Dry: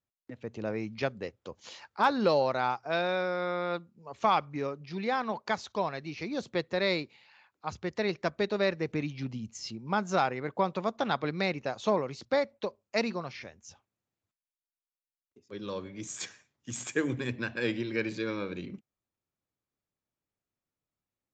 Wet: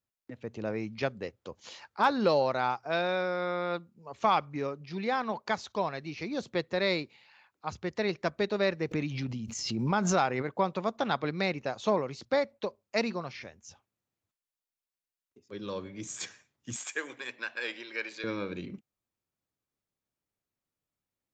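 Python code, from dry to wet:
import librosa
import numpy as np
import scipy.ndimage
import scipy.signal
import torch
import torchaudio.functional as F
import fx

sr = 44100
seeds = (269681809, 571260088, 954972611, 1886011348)

y = fx.pre_swell(x, sr, db_per_s=32.0, at=(8.91, 10.41), fade=0.02)
y = fx.highpass(y, sr, hz=740.0, slope=12, at=(16.76, 18.24))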